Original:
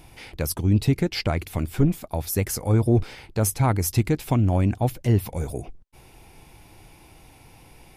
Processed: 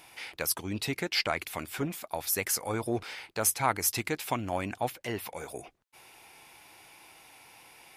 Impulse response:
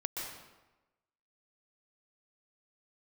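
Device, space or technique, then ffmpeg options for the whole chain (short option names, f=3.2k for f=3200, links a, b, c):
filter by subtraction: -filter_complex "[0:a]asettb=1/sr,asplit=3[a][b][c];[a]atrim=end=4.884[d];[b]atrim=start=4.88:end=5.54,asetpts=PTS-STARTPTS,afade=t=in:d=0.004:c=qsin,afade=t=out:st=0.656:d=0.004:c=qsin,bass=f=250:g=-4,treble=f=4k:g=-4[e];[c]atrim=start=5.536[f];[d][e]acrossfade=d=0.004:c1=hsin:c2=qsin[g];[g][f]acrossfade=d=0.004:c1=qsin:c2=hsin,asplit=2[h][i];[i]lowpass=1.5k,volume=-1[j];[h][j]amix=inputs=2:normalize=0"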